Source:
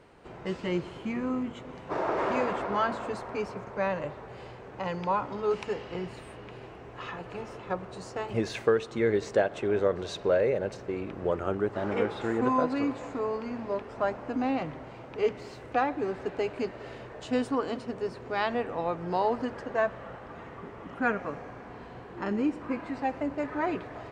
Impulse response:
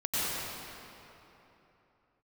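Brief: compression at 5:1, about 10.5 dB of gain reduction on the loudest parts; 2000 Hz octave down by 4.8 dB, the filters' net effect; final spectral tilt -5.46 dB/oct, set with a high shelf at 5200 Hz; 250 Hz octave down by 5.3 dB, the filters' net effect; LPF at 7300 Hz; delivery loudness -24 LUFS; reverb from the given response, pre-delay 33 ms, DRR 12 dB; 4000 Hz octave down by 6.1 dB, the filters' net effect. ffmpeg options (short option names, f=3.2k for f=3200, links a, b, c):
-filter_complex "[0:a]lowpass=7.3k,equalizer=f=250:t=o:g=-6.5,equalizer=f=2k:t=o:g=-5.5,equalizer=f=4k:t=o:g=-8.5,highshelf=f=5.2k:g=7,acompressor=threshold=-33dB:ratio=5,asplit=2[a][b];[1:a]atrim=start_sample=2205,adelay=33[c];[b][c]afir=irnorm=-1:irlink=0,volume=-22dB[d];[a][d]amix=inputs=2:normalize=0,volume=15dB"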